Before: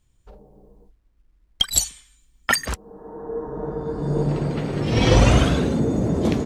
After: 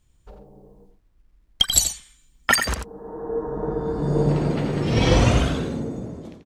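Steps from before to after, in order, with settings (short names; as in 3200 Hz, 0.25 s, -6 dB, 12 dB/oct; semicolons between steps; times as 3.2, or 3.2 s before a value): ending faded out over 2.00 s; outdoor echo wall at 15 m, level -7 dB; gain +1.5 dB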